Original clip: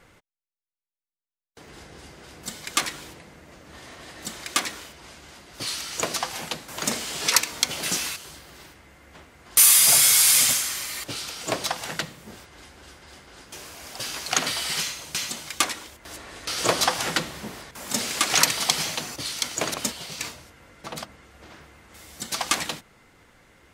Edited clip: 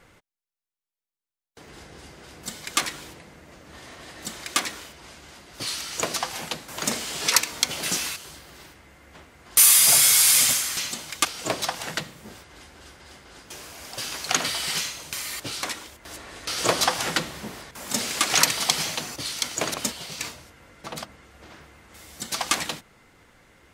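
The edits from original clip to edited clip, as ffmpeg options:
ffmpeg -i in.wav -filter_complex "[0:a]asplit=5[link_01][link_02][link_03][link_04][link_05];[link_01]atrim=end=10.772[link_06];[link_02]atrim=start=15.148:end=15.632[link_07];[link_03]atrim=start=11.268:end=15.152[link_08];[link_04]atrim=start=10.768:end=11.272[link_09];[link_05]atrim=start=15.628[link_10];[link_06][link_07]acrossfade=duration=0.004:curve1=hsin:curve2=hsin[link_11];[link_11][link_08]acrossfade=duration=0.004:curve1=hsin:curve2=hsin[link_12];[link_12][link_09]acrossfade=duration=0.004:curve1=hsin:curve2=hsin[link_13];[link_13][link_10]acrossfade=duration=0.004:curve1=hsin:curve2=hsin" out.wav

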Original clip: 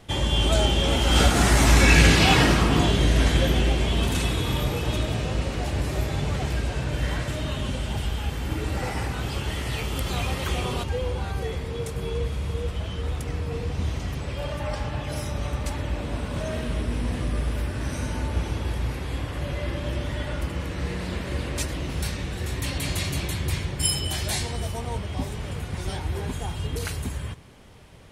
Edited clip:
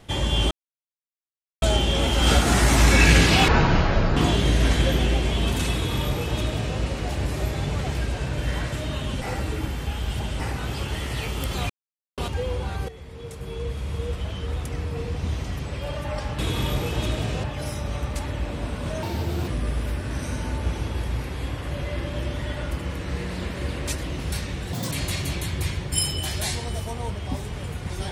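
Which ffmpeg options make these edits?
ffmpeg -i in.wav -filter_complex "[0:a]asplit=15[link_01][link_02][link_03][link_04][link_05][link_06][link_07][link_08][link_09][link_10][link_11][link_12][link_13][link_14][link_15];[link_01]atrim=end=0.51,asetpts=PTS-STARTPTS,afade=type=out:start_time=0.506:duration=0.004:curve=hsin,apad=pad_dur=1.11[link_16];[link_02]atrim=start=0.51:end=2.374,asetpts=PTS-STARTPTS,afade=type=in:duration=0.004:curve=hsin[link_17];[link_03]atrim=start=2.37:end=2.72,asetpts=PTS-STARTPTS,asetrate=22491,aresample=44100[link_18];[link_04]atrim=start=2.716:end=7.772[link_19];[link_05]atrim=start=7.768:end=8.952,asetpts=PTS-STARTPTS,areverse[link_20];[link_06]atrim=start=8.948:end=10.25,asetpts=PTS-STARTPTS,afade=type=out:start_time=1.298:duration=0.004:curve=hsin[link_21];[link_07]atrim=start=10.25:end=10.73,asetpts=PTS-STARTPTS,volume=0[link_22];[link_08]atrim=start=10.73:end=11.44,asetpts=PTS-STARTPTS,afade=type=in:duration=0.004:curve=hsin,afade=type=out:start_time=0.706:duration=0.004:curve=hsin:silence=0.188365[link_23];[link_09]atrim=start=11.44:end=14.942,asetpts=PTS-STARTPTS,afade=type=in:duration=1.15:silence=0.188365[link_24];[link_10]atrim=start=4.288:end=5.342[link_25];[link_11]atrim=start=14.938:end=16.534[link_26];[link_12]atrim=start=16.53:end=17.18,asetpts=PTS-STARTPTS,asetrate=63504,aresample=44100,atrim=end_sample=19906,asetpts=PTS-STARTPTS[link_27];[link_13]atrim=start=17.176:end=22.434[link_28];[link_14]atrim=start=22.43:end=22.79,asetpts=PTS-STARTPTS,asetrate=84231,aresample=44100,atrim=end_sample=8312,asetpts=PTS-STARTPTS[link_29];[link_15]atrim=start=22.786[link_30];[link_16][link_17]concat=n=2:v=0:a=1[link_31];[link_31][link_18]acrossfade=duration=0.004:curve1=hsin:curve2=hsin[link_32];[link_32][link_19]acrossfade=duration=0.004:curve1=hsin:curve2=hsin[link_33];[link_33][link_20]acrossfade=duration=0.004:curve1=hsin:curve2=hsin[link_34];[link_21][link_22][link_23][link_24]concat=n=4:v=0:a=1[link_35];[link_34][link_35]acrossfade=duration=0.004:curve1=hsin:curve2=hsin[link_36];[link_36][link_25]acrossfade=duration=0.004:curve1=hsin:curve2=hsin[link_37];[link_37][link_26]acrossfade=duration=0.004:curve1=hsin:curve2=hsin[link_38];[link_38][link_27]acrossfade=duration=0.004:curve1=hsin:curve2=hsin[link_39];[link_39][link_28]acrossfade=duration=0.004:curve1=hsin:curve2=hsin[link_40];[link_40][link_29]acrossfade=duration=0.004:curve1=hsin:curve2=hsin[link_41];[link_41][link_30]acrossfade=duration=0.004:curve1=hsin:curve2=hsin" out.wav

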